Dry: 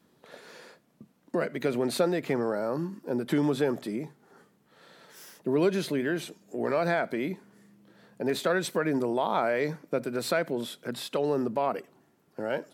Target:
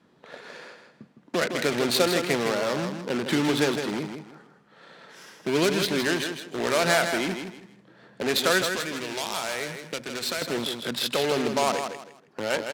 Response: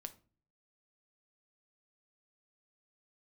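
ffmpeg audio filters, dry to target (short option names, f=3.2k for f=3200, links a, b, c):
-filter_complex "[0:a]asplit=2[a][b];[b]aeval=exprs='(mod(22.4*val(0)+1,2)-1)/22.4':c=same,volume=-7dB[c];[a][c]amix=inputs=2:normalize=0,adynamicsmooth=sensitivity=3.5:basefreq=1.8k,highpass=48,asettb=1/sr,asplit=3[d][e][f];[d]atrim=end=8.624[g];[e]atrim=start=8.62:end=10.42,asetpts=PTS-STARTPTS,afade=t=in:d=0.004:c=qsin,afade=t=out:st=1.796:d=0.004:c=qsin,acrossover=split=120|1700[h][i][j];[h]acompressor=threshold=-55dB:ratio=4[k];[i]acompressor=threshold=-36dB:ratio=4[l];[j]acompressor=threshold=-43dB:ratio=4[m];[k][l][m]amix=inputs=3:normalize=0[n];[f]atrim=start=10.416[o];[g][n]acrossfade=d=0.004:c1=hsin:c2=qsin[p];[p][o]acrossfade=d=0.004:c1=qsin:c2=hsin,aecho=1:1:160|320|480:0.447|0.121|0.0326,crystalizer=i=8.5:c=0"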